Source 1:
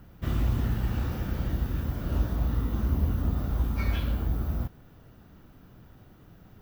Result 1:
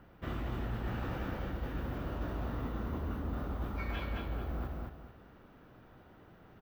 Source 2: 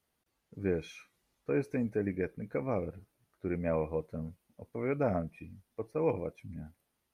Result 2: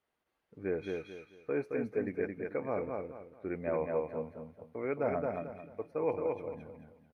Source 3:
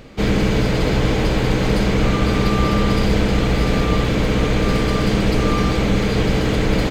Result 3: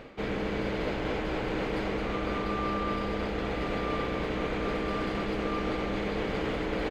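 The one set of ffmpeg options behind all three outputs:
ffmpeg -i in.wav -af "aecho=1:1:220|440|660|880:0.631|0.189|0.0568|0.017,areverse,acompressor=threshold=-24dB:ratio=5,areverse,bass=frequency=250:gain=-10,treble=frequency=4000:gain=-14" out.wav

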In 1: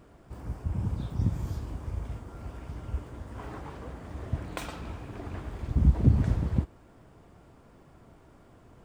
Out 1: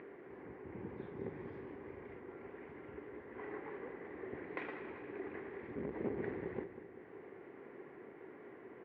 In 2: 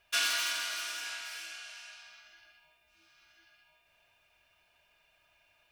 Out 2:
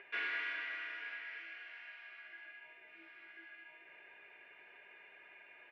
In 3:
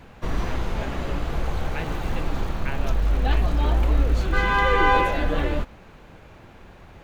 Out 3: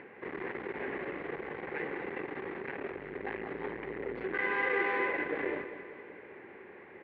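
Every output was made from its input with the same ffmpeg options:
ffmpeg -i in.wav -af "acompressor=mode=upward:threshold=-38dB:ratio=2.5,asoftclip=type=hard:threshold=-25dB,highpass=370,equalizer=frequency=390:width_type=q:width=4:gain=9,equalizer=frequency=650:width_type=q:width=4:gain=-10,equalizer=frequency=930:width_type=q:width=4:gain=-5,equalizer=frequency=1300:width_type=q:width=4:gain=-9,equalizer=frequency=2000:width_type=q:width=4:gain=8,lowpass=frequency=2100:width=0.5412,lowpass=frequency=2100:width=1.3066,aecho=1:1:194|388|582|776|970|1164|1358:0.266|0.16|0.0958|0.0575|0.0345|0.0207|0.0124,volume=-1.5dB" out.wav

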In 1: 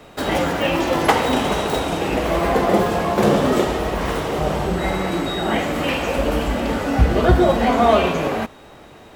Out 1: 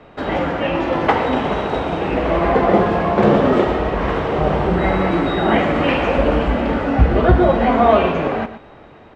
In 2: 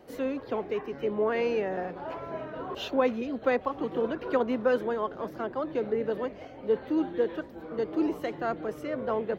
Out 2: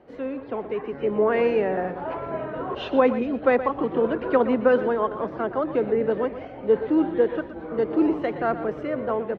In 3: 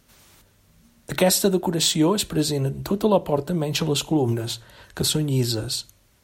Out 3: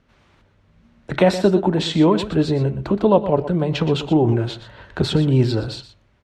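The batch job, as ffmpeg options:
ffmpeg -i in.wav -af "lowpass=2500,aecho=1:1:120:0.237,dynaudnorm=framelen=250:gausssize=7:maxgain=6.5dB" out.wav

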